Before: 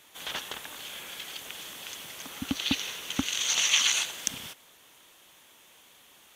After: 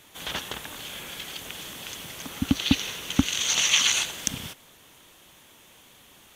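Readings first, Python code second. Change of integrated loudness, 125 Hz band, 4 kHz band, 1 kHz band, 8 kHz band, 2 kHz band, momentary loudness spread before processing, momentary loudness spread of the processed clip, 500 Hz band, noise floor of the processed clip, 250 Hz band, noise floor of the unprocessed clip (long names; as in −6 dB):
+3.0 dB, +11.5 dB, +2.5 dB, +3.5 dB, +2.5 dB, +2.5 dB, 17 LU, 17 LU, +5.0 dB, −54 dBFS, +8.5 dB, −57 dBFS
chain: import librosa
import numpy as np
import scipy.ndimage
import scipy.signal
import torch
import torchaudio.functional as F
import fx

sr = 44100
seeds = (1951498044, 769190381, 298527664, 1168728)

y = fx.low_shelf(x, sr, hz=260.0, db=11.5)
y = y * 10.0 ** (2.5 / 20.0)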